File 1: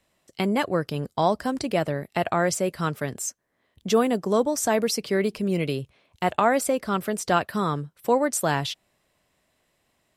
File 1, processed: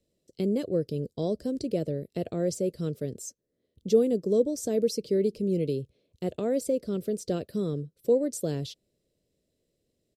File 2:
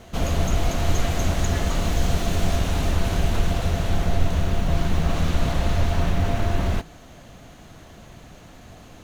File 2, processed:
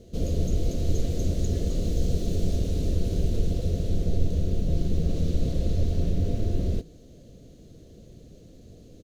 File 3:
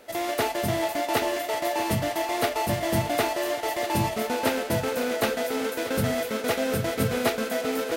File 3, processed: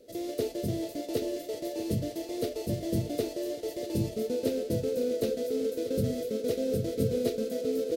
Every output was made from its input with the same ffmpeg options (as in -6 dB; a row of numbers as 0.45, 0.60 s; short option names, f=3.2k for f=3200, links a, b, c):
-af "firequalizer=gain_entry='entry(250,0);entry(480,4);entry(840,-25);entry(4200,-5);entry(9700,-8)':delay=0.05:min_phase=1,volume=-3dB"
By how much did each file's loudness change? -4.0, -4.0, -5.5 LU